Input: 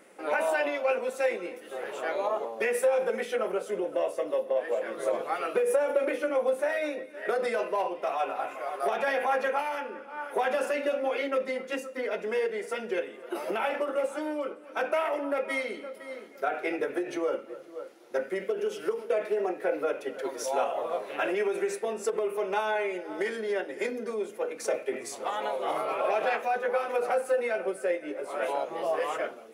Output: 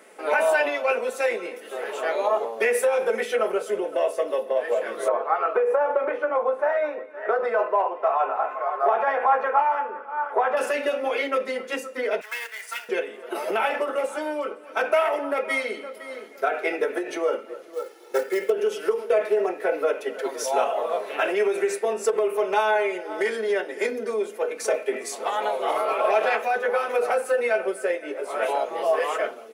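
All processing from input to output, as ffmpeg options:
-filter_complex "[0:a]asettb=1/sr,asplit=3[s0][s1][s2];[s0]atrim=end=5.084[s3];[s1]atrim=start=5.08:end=10.57,asetpts=PTS-STARTPTS,afade=t=in:d=0.004:c=qsin,afade=t=out:st=5.486:d=0.004:c=qsin,lowpass=f=1100:t=q:w=1.7,aemphasis=mode=production:type=riaa[s4];[s2]atrim=start=10.566[s5];[s3][s4]acrossfade=d=0.004:c1=hsin:c2=qsin[s6];[s6][s5]acrossfade=d=0.004:c1=qsin:c2=hsin,asettb=1/sr,asplit=3[s7][s8][s9];[s7]atrim=end=12.214[s10];[s8]atrim=start=12.21:end=12.89,asetpts=PTS-STARTPTS,afade=t=in:d=0.004:c=qsin,afade=t=out:st=0.676:d=0.004:c=qsin,highpass=f=1000:w=0.5412,highpass=f=1000:w=1.3066,acrusher=bits=2:mode=log:mix=0:aa=0.000001[s11];[s9]atrim=start=12.886[s12];[s10][s11]acrossfade=d=0.004:c1=hsin:c2=qsin[s13];[s13][s12]acrossfade=d=0.004:c1=qsin:c2=hsin,asettb=1/sr,asplit=3[s14][s15][s16];[s14]atrim=end=17.734[s17];[s15]atrim=start=17.73:end=18.5,asetpts=PTS-STARTPTS,afade=t=in:d=0.004:c=qsin,afade=t=out:st=0.766:d=0.004:c=qsin,acrusher=bits=5:mode=log:mix=0:aa=0.000001,aecho=1:1:2.3:0.61,atrim=end_sample=33957[s18];[s16]atrim=start=18.496[s19];[s17][s18]acrossfade=d=0.004:c1=hsin:c2=qsin[s20];[s20][s19]acrossfade=d=0.004:c1=qsin:c2=hsin,highpass=310,aecho=1:1:4.6:0.34,volume=1.88"

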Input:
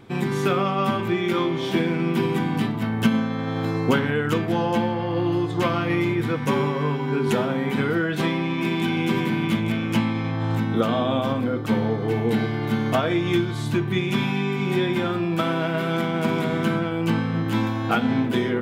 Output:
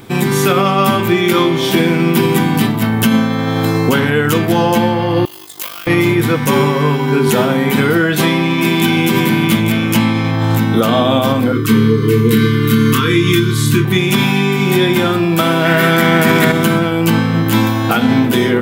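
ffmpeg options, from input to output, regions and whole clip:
-filter_complex "[0:a]asettb=1/sr,asplit=3[s0][s1][s2];[s0]atrim=end=5.254[s3];[s1]atrim=start=5.25:end=5.87,asetpts=PTS-STARTPTS,afade=t=in:d=0.004:c=qsin,afade=t=out:st=0.616:d=0.004:c=qsin,aderivative,aeval=exprs='val(0)*sin(2*PI*25*n/s)':c=same,acrusher=bits=3:mode=log:mix=0:aa=0.000001[s4];[s2]atrim=start=5.866[s5];[s3][s4]acrossfade=d=0.004:c1=hsin:c2=qsin[s6];[s6][s5]acrossfade=d=0.004:c1=qsin:c2=hsin,asettb=1/sr,asplit=3[s7][s8][s9];[s7]atrim=end=11.524[s10];[s8]atrim=start=11.52:end=13.85,asetpts=PTS-STARTPTS,afade=t=in:d=0.004:c=qsin,afade=t=out:st=2.326:d=0.004:c=qsin,asuperstop=centerf=680:order=12:qfactor=1.3,asplit=2[s11][s12];[s12]adelay=27,volume=0.473[s13];[s11][s13]amix=inputs=2:normalize=0,atrim=end_sample=102753[s14];[s9]atrim=start=13.846[s15];[s10][s14]acrossfade=d=0.004:c1=hsin:c2=qsin[s16];[s16][s15]acrossfade=d=0.004:c1=qsin:c2=hsin,asettb=1/sr,asplit=3[s17][s18][s19];[s17]atrim=end=15.654[s20];[s18]atrim=start=15.65:end=16.52,asetpts=PTS-STARTPTS,afade=t=in:d=0.004:c=qsin,afade=t=out:st=0.866:d=0.004:c=qsin,equalizer=f=1800:w=3.7:g=11.5,acontrast=53[s21];[s19]atrim=start=16.516[s22];[s20][s21]acrossfade=d=0.004:c1=hsin:c2=qsin[s23];[s23][s22]acrossfade=d=0.004:c1=qsin:c2=hsin,aemphasis=mode=production:type=50fm,alimiter=level_in=3.76:limit=0.891:release=50:level=0:latency=1,volume=0.891"

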